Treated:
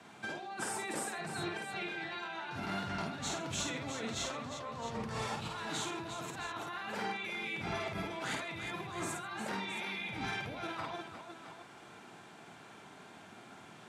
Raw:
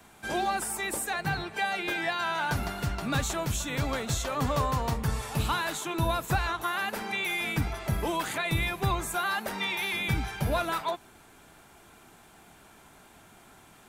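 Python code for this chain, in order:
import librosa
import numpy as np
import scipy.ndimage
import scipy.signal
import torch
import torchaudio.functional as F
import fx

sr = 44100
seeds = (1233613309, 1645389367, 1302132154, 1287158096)

y = scipy.signal.sosfilt(scipy.signal.butter(2, 5700.0, 'lowpass', fs=sr, output='sos'), x)
y = fx.spec_erase(y, sr, start_s=7.14, length_s=0.4, low_hz=560.0, high_hz=1900.0)
y = scipy.signal.sosfilt(scipy.signal.butter(4, 110.0, 'highpass', fs=sr, output='sos'), y)
y = fx.over_compress(y, sr, threshold_db=-37.0, ratio=-1.0)
y = fx.echo_multitap(y, sr, ms=(52, 134, 356, 666), db=(-3.5, -17.5, -8.5, -11.0))
y = F.gain(torch.from_numpy(y), -5.5).numpy()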